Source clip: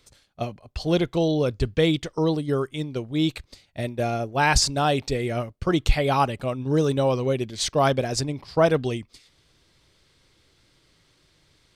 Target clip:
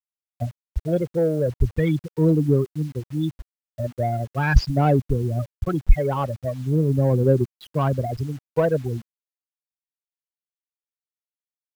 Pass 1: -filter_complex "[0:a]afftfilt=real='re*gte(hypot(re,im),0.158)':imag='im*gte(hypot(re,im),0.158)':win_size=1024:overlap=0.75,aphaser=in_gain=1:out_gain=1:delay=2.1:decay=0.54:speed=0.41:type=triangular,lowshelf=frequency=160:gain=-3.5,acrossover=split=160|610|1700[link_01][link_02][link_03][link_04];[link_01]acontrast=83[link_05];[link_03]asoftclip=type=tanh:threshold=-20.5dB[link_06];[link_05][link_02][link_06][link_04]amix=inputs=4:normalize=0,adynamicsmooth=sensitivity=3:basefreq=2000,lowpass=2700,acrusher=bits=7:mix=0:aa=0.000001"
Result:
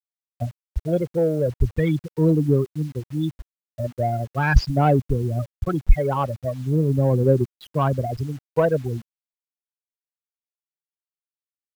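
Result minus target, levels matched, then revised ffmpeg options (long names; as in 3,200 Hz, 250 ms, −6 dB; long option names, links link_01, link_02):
soft clipping: distortion −5 dB
-filter_complex "[0:a]afftfilt=real='re*gte(hypot(re,im),0.158)':imag='im*gte(hypot(re,im),0.158)':win_size=1024:overlap=0.75,aphaser=in_gain=1:out_gain=1:delay=2.1:decay=0.54:speed=0.41:type=triangular,lowshelf=frequency=160:gain=-3.5,acrossover=split=160|610|1700[link_01][link_02][link_03][link_04];[link_01]acontrast=83[link_05];[link_03]asoftclip=type=tanh:threshold=-27dB[link_06];[link_05][link_02][link_06][link_04]amix=inputs=4:normalize=0,adynamicsmooth=sensitivity=3:basefreq=2000,lowpass=2700,acrusher=bits=7:mix=0:aa=0.000001"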